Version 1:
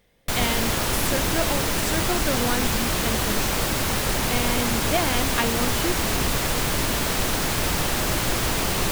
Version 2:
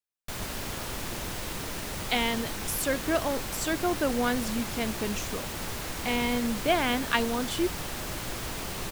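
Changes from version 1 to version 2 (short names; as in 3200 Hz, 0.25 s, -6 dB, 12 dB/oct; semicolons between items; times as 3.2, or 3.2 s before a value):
speech: entry +1.75 s; background -11.5 dB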